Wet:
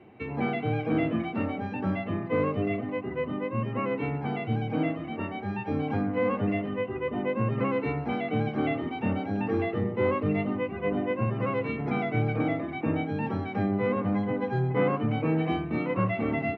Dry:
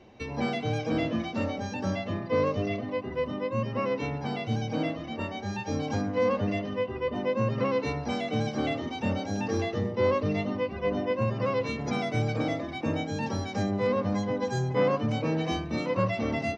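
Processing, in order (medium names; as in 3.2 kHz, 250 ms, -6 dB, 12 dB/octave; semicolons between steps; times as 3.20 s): cabinet simulation 120–2400 Hz, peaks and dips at 230 Hz -4 dB, 560 Hz -10 dB, 990 Hz -6 dB, 1.7 kHz -5 dB; trim +4.5 dB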